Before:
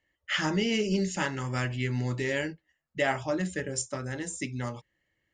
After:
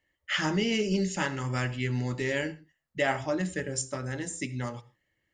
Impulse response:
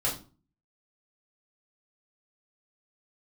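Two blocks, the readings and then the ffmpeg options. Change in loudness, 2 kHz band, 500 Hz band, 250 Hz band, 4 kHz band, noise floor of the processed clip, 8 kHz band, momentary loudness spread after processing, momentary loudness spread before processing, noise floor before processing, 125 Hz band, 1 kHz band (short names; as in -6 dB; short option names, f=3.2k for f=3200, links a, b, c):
0.0 dB, 0.0 dB, 0.0 dB, 0.0 dB, 0.0 dB, -79 dBFS, 0.0 dB, 10 LU, 9 LU, -79 dBFS, 0.0 dB, 0.0 dB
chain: -filter_complex "[0:a]asplit=2[a][b];[1:a]atrim=start_sample=2205,atrim=end_sample=4410,adelay=69[c];[b][c]afir=irnorm=-1:irlink=0,volume=-25dB[d];[a][d]amix=inputs=2:normalize=0"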